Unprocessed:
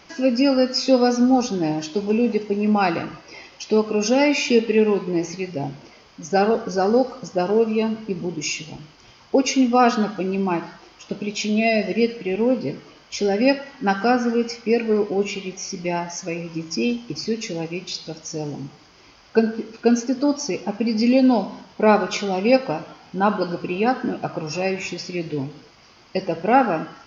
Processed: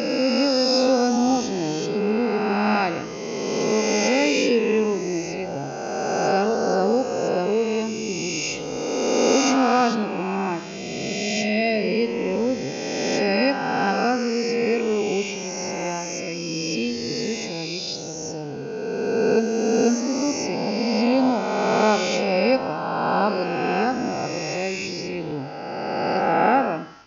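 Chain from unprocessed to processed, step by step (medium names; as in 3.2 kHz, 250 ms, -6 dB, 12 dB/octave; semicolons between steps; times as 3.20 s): reverse spectral sustain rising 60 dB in 2.78 s; trim -5.5 dB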